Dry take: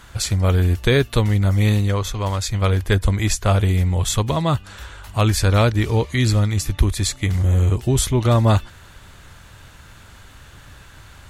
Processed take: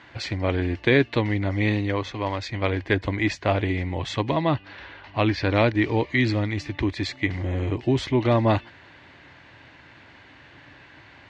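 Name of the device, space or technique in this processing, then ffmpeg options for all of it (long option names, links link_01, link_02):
kitchen radio: -filter_complex "[0:a]highpass=170,equalizer=frequency=190:width_type=q:width=4:gain=-8,equalizer=frequency=300:width_type=q:width=4:gain=6,equalizer=frequency=450:width_type=q:width=4:gain=-4,equalizer=frequency=1300:width_type=q:width=4:gain=-9,equalizer=frequency=2000:width_type=q:width=4:gain=5,equalizer=frequency=3500:width_type=q:width=4:gain=-6,lowpass=frequency=4000:width=0.5412,lowpass=frequency=4000:width=1.3066,asettb=1/sr,asplit=3[link_01][link_02][link_03];[link_01]atrim=end=4.344[link_04];[link_02]atrim=start=4.34:end=5.49,asetpts=PTS-STARTPTS,afade=type=in:duration=0.004:curve=qsin,afade=type=out:start_time=1.146:duration=0.004:curve=qsin,lowpass=frequency=5700:width=0.5412,lowpass=frequency=5700:width=1.3066[link_05];[link_03]atrim=start=5.486[link_06];[link_04][link_05]acrossfade=duration=0.004:curve1=hsin:curve2=qsin[link_07];[link_07][link_06]acrossfade=duration=0.004:curve1=qsin:curve2=hsin"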